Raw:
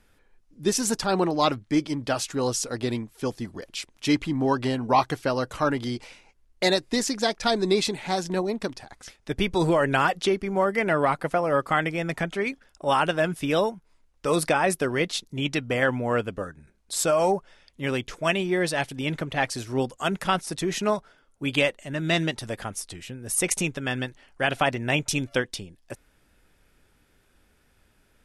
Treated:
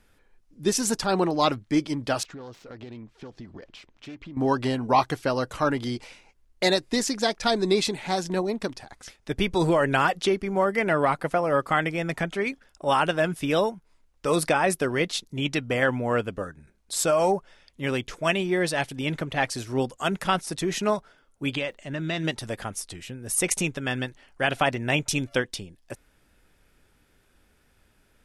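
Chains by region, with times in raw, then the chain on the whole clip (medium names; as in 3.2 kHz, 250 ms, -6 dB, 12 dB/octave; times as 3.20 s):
2.23–4.37 s: self-modulated delay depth 0.2 ms + compression 8:1, threshold -37 dBFS + distance through air 150 m
21.50–22.23 s: low-pass 6.3 kHz + compression 3:1, threshold -26 dBFS + crackle 160 per s -58 dBFS
whole clip: none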